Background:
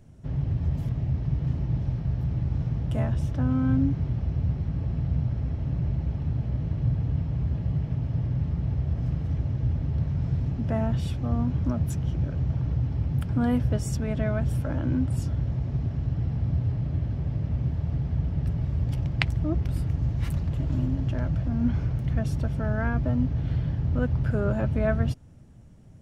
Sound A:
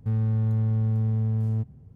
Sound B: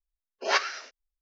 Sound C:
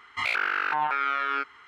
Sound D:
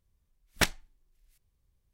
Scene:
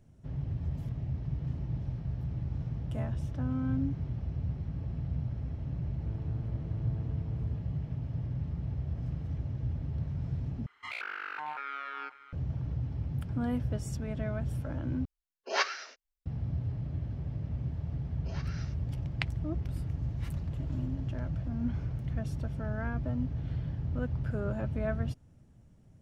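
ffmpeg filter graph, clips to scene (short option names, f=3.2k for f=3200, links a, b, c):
-filter_complex "[2:a]asplit=2[a][b];[0:a]volume=-8dB[c];[1:a]asoftclip=type=tanh:threshold=-28dB[d];[3:a]aecho=1:1:546:0.158[e];[b]acompressor=threshold=-35dB:ratio=6:attack=3.2:release=140:knee=1:detection=peak[f];[c]asplit=3[g][h][i];[g]atrim=end=10.664[j];[e]atrim=end=1.67,asetpts=PTS-STARTPTS,volume=-12.5dB[k];[h]atrim=start=12.326:end=15.054[l];[a]atrim=end=1.21,asetpts=PTS-STARTPTS,volume=-4.5dB[m];[i]atrim=start=16.256[n];[d]atrim=end=1.95,asetpts=PTS-STARTPTS,volume=-12.5dB,afade=t=in:d=0.004:c=hsin,afade=t=out:st=1.946:d=0.004:c=hsin,adelay=5960[o];[f]atrim=end=1.21,asetpts=PTS-STARTPTS,volume=-10.5dB,afade=t=in:d=0.004:c=hsin,afade=t=out:st=1.206:d=0.004:c=hsin,adelay=17840[p];[j][k]acrossfade=d=0.004:c1=hsin:c2=hsin[q];[q][l]acrossfade=d=0.004:c1=hsin:c2=hsin[r];[r][m]acrossfade=d=0.004:c1=hsin:c2=hsin[s];[s][n]acrossfade=d=0.004:c1=hsin:c2=hsin[t];[t][o][p]amix=inputs=3:normalize=0"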